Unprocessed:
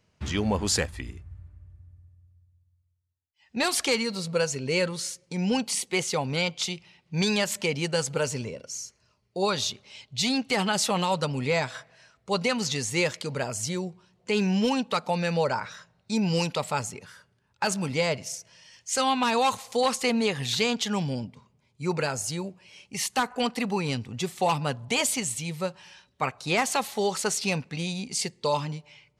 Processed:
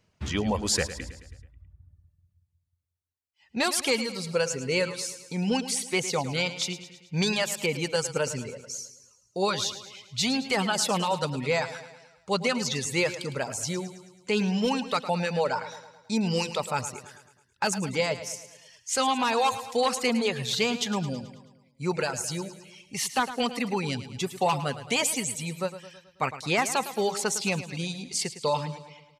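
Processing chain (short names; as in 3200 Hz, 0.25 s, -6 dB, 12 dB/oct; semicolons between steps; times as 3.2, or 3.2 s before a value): reverb removal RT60 0.97 s; on a send: feedback echo 0.108 s, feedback 54%, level -13 dB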